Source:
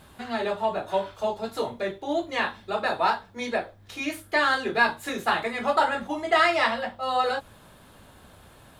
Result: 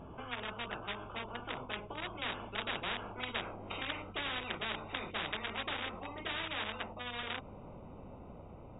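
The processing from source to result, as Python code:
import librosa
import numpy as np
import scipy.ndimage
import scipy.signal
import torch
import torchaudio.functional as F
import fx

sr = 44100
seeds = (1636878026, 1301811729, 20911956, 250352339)

y = fx.wiener(x, sr, points=25)
y = fx.doppler_pass(y, sr, speed_mps=21, closest_m=13.0, pass_at_s=3.49)
y = fx.brickwall_lowpass(y, sr, high_hz=3800.0)
y = fx.spectral_comp(y, sr, ratio=10.0)
y = F.gain(torch.from_numpy(y), -4.5).numpy()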